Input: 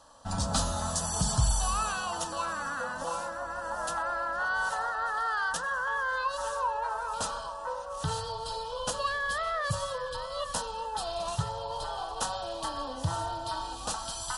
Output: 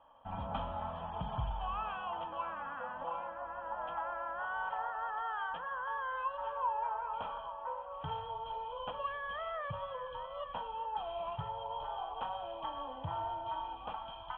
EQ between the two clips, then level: rippled Chebyshev low-pass 3300 Hz, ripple 9 dB; -2.5 dB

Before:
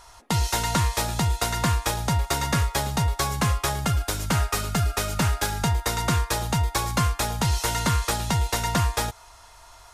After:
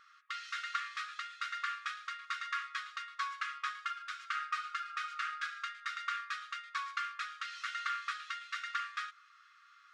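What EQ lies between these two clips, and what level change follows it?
brick-wall FIR high-pass 1100 Hz; tape spacing loss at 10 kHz 38 dB; 0.0 dB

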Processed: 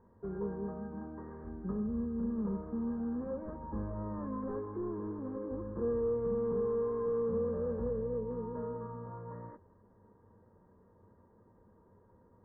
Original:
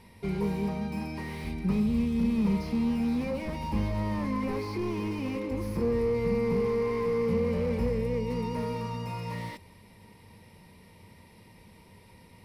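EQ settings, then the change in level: rippled Chebyshev low-pass 1700 Hz, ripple 6 dB; bell 160 Hz -7 dB 0.28 oct; -4.0 dB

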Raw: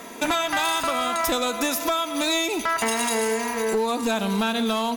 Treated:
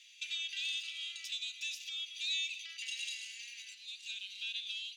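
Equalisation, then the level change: elliptic high-pass 2700 Hz, stop band 60 dB; air absorption 160 m; notch 5200 Hz, Q 29; -3.5 dB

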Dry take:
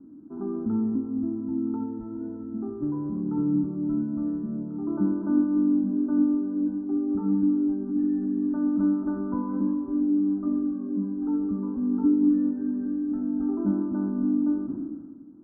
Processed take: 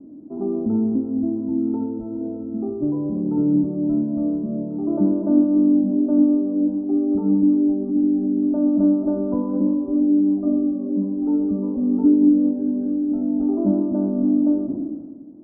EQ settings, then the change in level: synth low-pass 610 Hz, resonance Q 4.9; +4.0 dB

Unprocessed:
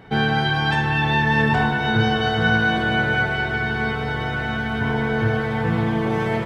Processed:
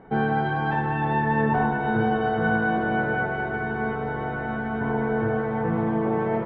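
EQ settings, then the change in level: LPF 1100 Hz 12 dB/oct; bell 87 Hz -13 dB 1.2 oct; 0.0 dB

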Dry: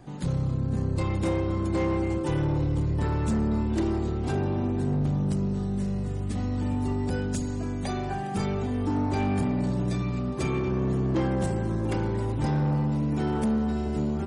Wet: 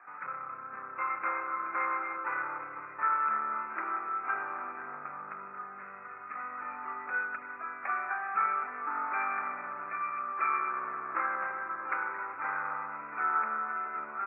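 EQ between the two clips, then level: resonant high-pass 1300 Hz, resonance Q 7.5; Chebyshev low-pass 2500 Hz, order 8; 0.0 dB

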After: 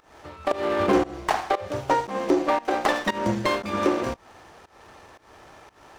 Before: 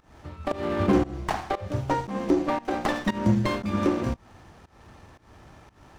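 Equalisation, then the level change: EQ curve 120 Hz 0 dB, 230 Hz +3 dB, 430 Hz +13 dB; -8.0 dB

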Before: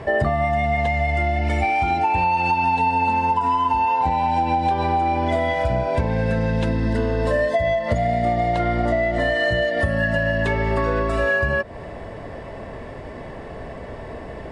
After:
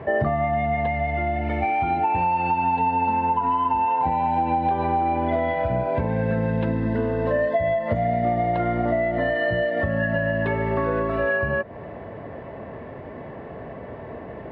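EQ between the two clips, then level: HPF 100 Hz 12 dB/oct; air absorption 470 m; 0.0 dB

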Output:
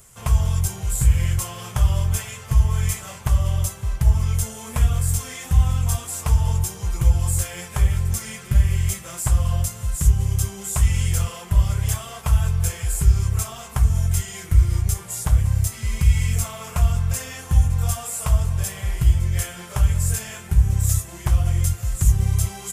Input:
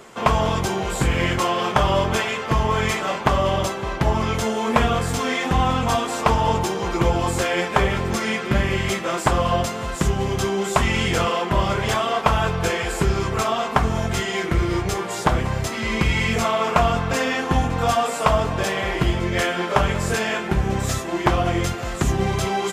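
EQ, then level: EQ curve 100 Hz 0 dB, 280 Hz -28 dB, 510 Hz -24 dB, 770 Hz -24 dB, 4100 Hz -17 dB, 9800 Hz +3 dB; +7.5 dB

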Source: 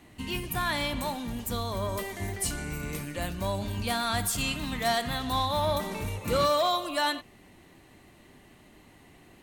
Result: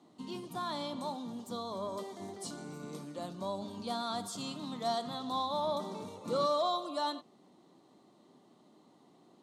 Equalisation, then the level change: HPF 170 Hz 24 dB/oct; air absorption 78 m; band shelf 2100 Hz -14.5 dB 1.1 oct; -5.0 dB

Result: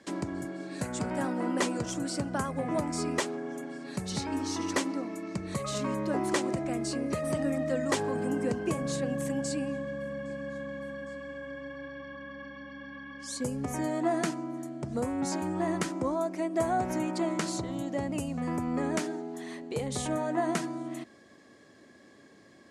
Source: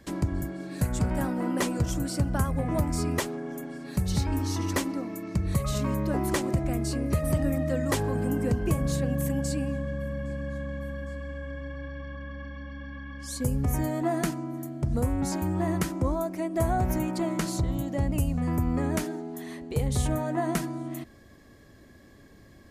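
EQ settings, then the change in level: HPF 230 Hz 12 dB/oct; LPF 9300 Hz 24 dB/oct; 0.0 dB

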